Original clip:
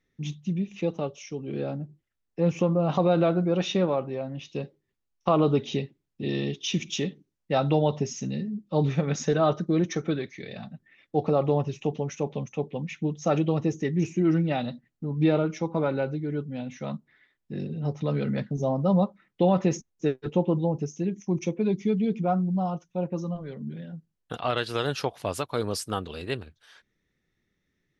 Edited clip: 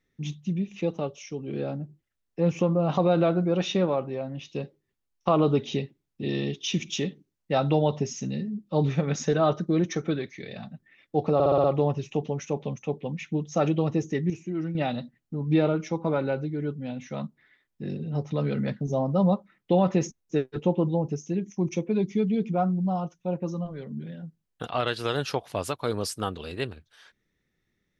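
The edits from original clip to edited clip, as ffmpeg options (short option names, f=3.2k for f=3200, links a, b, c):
-filter_complex "[0:a]asplit=8[a][b][c][d][e][f][g][h];[a]atrim=end=11.402[i];[b]atrim=start=11.338:end=11.402[j];[c]atrim=start=11.338:end=11.402[k];[d]atrim=start=11.338:end=11.402[l];[e]atrim=start=11.338:end=11.402[m];[f]atrim=start=11.338:end=14.002[n];[g]atrim=start=13.998:end=14.452,asetpts=PTS-STARTPTS,volume=-8dB[o];[h]atrim=start=14.448[p];[i][j]acrossfade=d=0.004:c1=hsin:c2=hsin[q];[q][k]acrossfade=d=0.004:c1=hsin:c2=hsin[r];[r][l]acrossfade=d=0.004:c1=hsin:c2=hsin[s];[s][m]acrossfade=d=0.004:c1=hsin:c2=hsin[t];[t][n]acrossfade=d=0.004:c1=hsin:c2=hsin[u];[u][o]acrossfade=d=0.004:c1=hsin:c2=hsin[v];[v][p]acrossfade=d=0.004:c1=hsin:c2=hsin"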